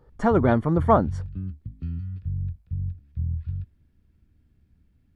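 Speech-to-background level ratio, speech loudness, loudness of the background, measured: 10.5 dB, -22.0 LUFS, -32.5 LUFS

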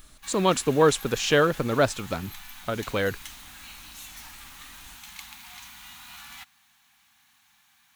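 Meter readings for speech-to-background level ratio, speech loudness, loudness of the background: 17.5 dB, -24.5 LUFS, -42.0 LUFS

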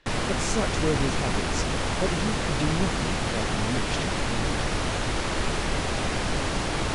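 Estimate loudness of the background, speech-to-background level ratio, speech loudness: -27.5 LUFS, -4.5 dB, -32.0 LUFS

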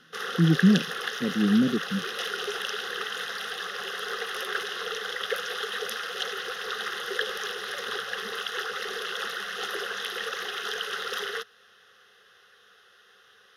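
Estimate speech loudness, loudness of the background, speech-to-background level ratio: -24.5 LUFS, -31.5 LUFS, 7.0 dB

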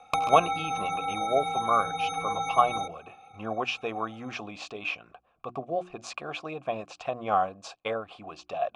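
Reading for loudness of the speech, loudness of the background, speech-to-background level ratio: -31.0 LUFS, -30.5 LUFS, -0.5 dB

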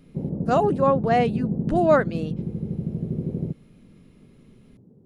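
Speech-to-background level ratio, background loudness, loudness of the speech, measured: 6.5 dB, -29.0 LUFS, -22.5 LUFS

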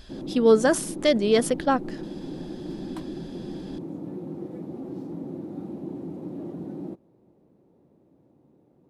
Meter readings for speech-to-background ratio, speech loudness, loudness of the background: 14.0 dB, -22.0 LUFS, -36.0 LUFS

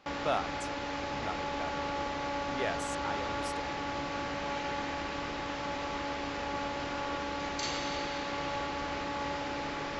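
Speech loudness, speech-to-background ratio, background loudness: -39.5 LUFS, -4.0 dB, -35.5 LUFS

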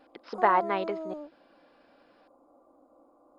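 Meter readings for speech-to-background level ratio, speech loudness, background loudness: 10.5 dB, -27.5 LUFS, -38.0 LUFS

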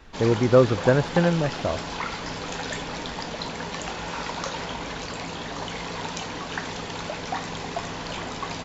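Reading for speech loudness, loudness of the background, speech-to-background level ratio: -22.0 LUFS, -32.0 LUFS, 10.0 dB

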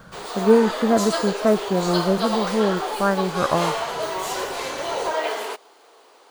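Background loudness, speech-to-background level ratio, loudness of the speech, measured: -26.5 LUFS, 5.0 dB, -21.5 LUFS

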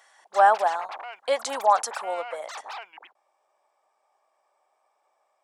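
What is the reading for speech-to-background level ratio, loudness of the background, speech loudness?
15.0 dB, -39.0 LUFS, -24.0 LUFS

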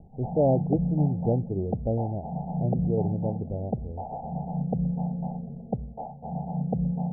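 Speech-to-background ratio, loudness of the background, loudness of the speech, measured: 3.0 dB, -31.5 LUFS, -28.5 LUFS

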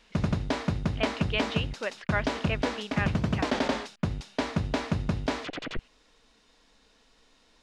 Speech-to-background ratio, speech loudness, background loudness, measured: -3.5 dB, -34.5 LUFS, -31.0 LUFS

